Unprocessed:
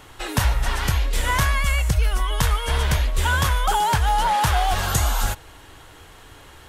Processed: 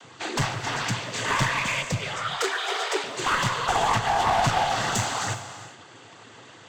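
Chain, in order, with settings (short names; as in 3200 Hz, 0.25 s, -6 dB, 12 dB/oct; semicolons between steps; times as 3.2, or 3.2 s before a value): noise vocoder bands 16; one-sided clip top -23 dBFS; 2.16–3.04 frequency shift +280 Hz; reverb, pre-delay 3 ms, DRR 9.5 dB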